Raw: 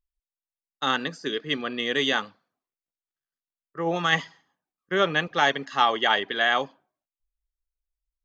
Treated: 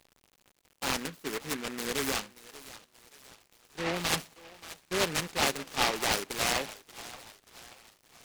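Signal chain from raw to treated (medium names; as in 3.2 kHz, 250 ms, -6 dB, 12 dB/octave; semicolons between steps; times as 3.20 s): crackle 160 per s -36 dBFS; treble shelf 4.3 kHz -8 dB; thinning echo 581 ms, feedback 54%, high-pass 660 Hz, level -15 dB; delay time shaken by noise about 1.6 kHz, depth 0.22 ms; trim -6 dB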